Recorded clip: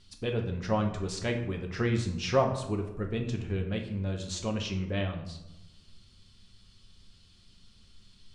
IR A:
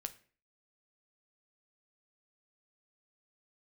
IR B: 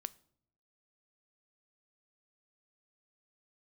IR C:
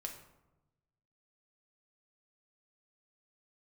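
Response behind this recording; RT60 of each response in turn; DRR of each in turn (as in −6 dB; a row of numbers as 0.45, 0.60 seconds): C; 0.45 s, non-exponential decay, 1.0 s; 8.5, 16.0, 2.5 decibels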